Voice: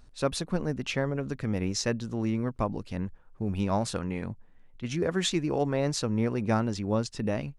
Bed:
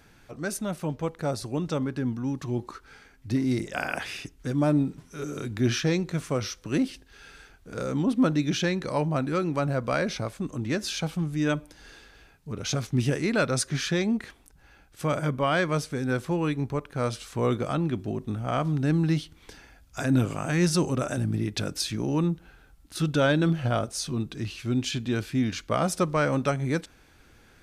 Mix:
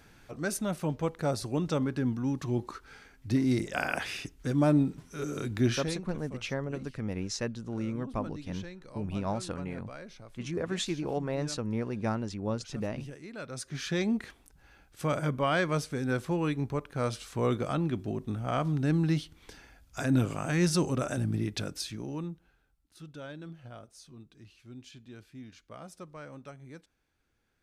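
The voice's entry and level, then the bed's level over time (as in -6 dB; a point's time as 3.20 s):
5.55 s, -5.0 dB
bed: 5.62 s -1 dB
6.18 s -19 dB
13.32 s -19 dB
14.02 s -3 dB
21.45 s -3 dB
23.00 s -21 dB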